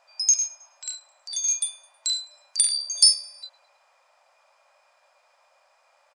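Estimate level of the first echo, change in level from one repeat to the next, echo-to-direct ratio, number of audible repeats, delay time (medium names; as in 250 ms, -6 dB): -24.0 dB, -7.0 dB, -23.0 dB, 2, 106 ms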